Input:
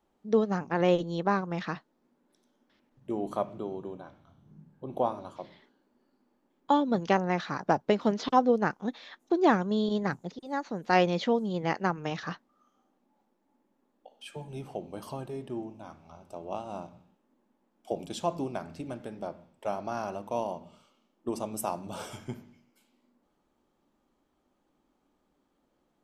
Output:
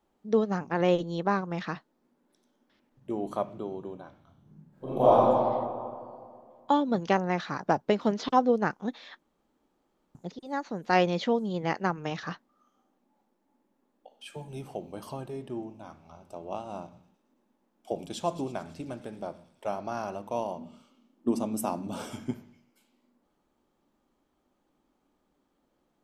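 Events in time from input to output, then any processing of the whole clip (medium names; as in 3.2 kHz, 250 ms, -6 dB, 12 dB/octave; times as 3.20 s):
4.69–5.18 s: reverb throw, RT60 2.2 s, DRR -11 dB
9.20–10.15 s: room tone
14.30–14.92 s: treble shelf 7.7 kHz +7 dB
16.81–19.69 s: feedback echo behind a high-pass 110 ms, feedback 69%, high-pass 3 kHz, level -12 dB
20.58–22.31 s: peaking EQ 250 Hz +12 dB 0.6 oct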